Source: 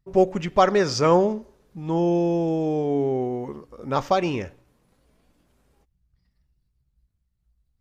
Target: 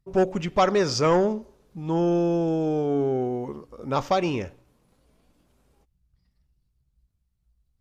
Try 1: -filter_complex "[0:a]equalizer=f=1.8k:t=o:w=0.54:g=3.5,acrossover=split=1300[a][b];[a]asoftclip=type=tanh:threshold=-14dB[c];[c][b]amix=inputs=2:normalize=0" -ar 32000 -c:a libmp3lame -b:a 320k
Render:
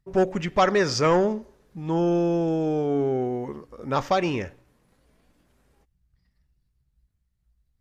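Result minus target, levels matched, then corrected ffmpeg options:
2000 Hz band +3.5 dB
-filter_complex "[0:a]equalizer=f=1.8k:t=o:w=0.54:g=-3.5,acrossover=split=1300[a][b];[a]asoftclip=type=tanh:threshold=-14dB[c];[c][b]amix=inputs=2:normalize=0" -ar 32000 -c:a libmp3lame -b:a 320k

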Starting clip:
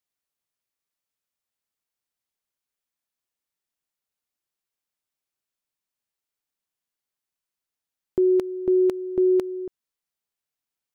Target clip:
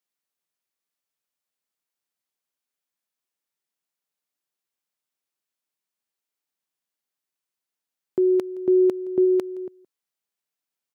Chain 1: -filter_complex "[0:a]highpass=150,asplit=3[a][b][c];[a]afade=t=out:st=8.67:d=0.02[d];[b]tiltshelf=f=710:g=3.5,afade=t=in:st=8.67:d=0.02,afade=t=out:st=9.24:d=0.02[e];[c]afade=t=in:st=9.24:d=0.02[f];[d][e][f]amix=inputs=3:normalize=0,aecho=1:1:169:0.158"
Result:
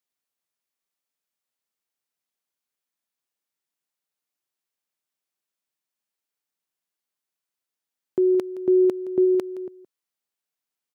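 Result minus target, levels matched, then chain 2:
echo-to-direct +6 dB
-filter_complex "[0:a]highpass=150,asplit=3[a][b][c];[a]afade=t=out:st=8.67:d=0.02[d];[b]tiltshelf=f=710:g=3.5,afade=t=in:st=8.67:d=0.02,afade=t=out:st=9.24:d=0.02[e];[c]afade=t=in:st=9.24:d=0.02[f];[d][e][f]amix=inputs=3:normalize=0,aecho=1:1:169:0.0794"

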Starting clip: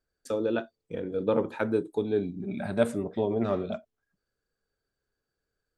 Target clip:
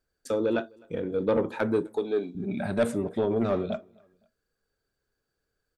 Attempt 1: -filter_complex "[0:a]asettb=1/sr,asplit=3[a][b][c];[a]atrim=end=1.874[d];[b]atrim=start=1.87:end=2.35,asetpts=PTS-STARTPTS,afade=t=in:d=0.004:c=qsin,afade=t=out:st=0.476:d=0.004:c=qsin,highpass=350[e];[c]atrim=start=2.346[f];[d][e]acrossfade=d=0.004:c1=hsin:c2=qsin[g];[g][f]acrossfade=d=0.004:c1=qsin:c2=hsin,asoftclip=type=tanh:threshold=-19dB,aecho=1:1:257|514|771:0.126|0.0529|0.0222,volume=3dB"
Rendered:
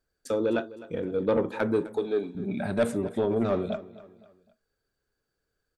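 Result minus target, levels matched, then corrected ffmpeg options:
echo-to-direct +10.5 dB
-filter_complex "[0:a]asettb=1/sr,asplit=3[a][b][c];[a]atrim=end=1.874[d];[b]atrim=start=1.87:end=2.35,asetpts=PTS-STARTPTS,afade=t=in:d=0.004:c=qsin,afade=t=out:st=0.476:d=0.004:c=qsin,highpass=350[e];[c]atrim=start=2.346[f];[d][e]acrossfade=d=0.004:c1=hsin:c2=qsin[g];[g][f]acrossfade=d=0.004:c1=qsin:c2=hsin,asoftclip=type=tanh:threshold=-19dB,aecho=1:1:257|514:0.0376|0.0158,volume=3dB"

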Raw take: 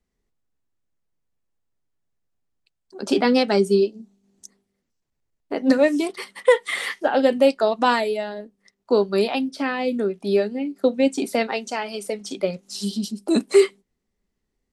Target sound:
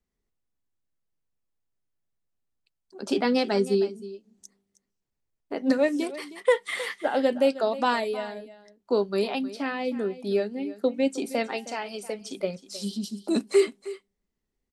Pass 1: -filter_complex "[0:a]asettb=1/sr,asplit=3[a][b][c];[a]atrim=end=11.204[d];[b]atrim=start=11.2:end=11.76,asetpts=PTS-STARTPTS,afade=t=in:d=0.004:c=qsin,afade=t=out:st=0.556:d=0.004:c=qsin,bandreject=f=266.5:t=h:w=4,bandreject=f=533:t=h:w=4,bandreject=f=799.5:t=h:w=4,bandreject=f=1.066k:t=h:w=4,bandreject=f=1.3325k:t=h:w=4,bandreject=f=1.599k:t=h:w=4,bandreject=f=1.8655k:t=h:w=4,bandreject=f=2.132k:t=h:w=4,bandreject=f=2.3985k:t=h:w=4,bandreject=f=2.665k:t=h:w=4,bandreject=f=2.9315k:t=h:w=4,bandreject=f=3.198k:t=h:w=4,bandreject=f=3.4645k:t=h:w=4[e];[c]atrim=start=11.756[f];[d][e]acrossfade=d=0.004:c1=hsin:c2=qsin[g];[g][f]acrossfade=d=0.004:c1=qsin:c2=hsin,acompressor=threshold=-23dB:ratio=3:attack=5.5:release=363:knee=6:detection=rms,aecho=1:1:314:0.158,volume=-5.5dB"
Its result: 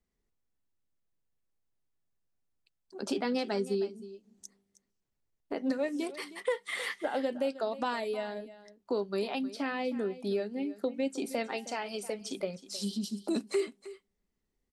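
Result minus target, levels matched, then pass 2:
compressor: peak gain reduction +11 dB
-filter_complex "[0:a]asettb=1/sr,asplit=3[a][b][c];[a]atrim=end=11.204[d];[b]atrim=start=11.2:end=11.76,asetpts=PTS-STARTPTS,afade=t=in:d=0.004:c=qsin,afade=t=out:st=0.556:d=0.004:c=qsin,bandreject=f=266.5:t=h:w=4,bandreject=f=533:t=h:w=4,bandreject=f=799.5:t=h:w=4,bandreject=f=1.066k:t=h:w=4,bandreject=f=1.3325k:t=h:w=4,bandreject=f=1.599k:t=h:w=4,bandreject=f=1.8655k:t=h:w=4,bandreject=f=2.132k:t=h:w=4,bandreject=f=2.3985k:t=h:w=4,bandreject=f=2.665k:t=h:w=4,bandreject=f=2.9315k:t=h:w=4,bandreject=f=3.198k:t=h:w=4,bandreject=f=3.4645k:t=h:w=4[e];[c]atrim=start=11.756[f];[d][e]acrossfade=d=0.004:c1=hsin:c2=qsin[g];[g][f]acrossfade=d=0.004:c1=qsin:c2=hsin,aecho=1:1:314:0.158,volume=-5.5dB"

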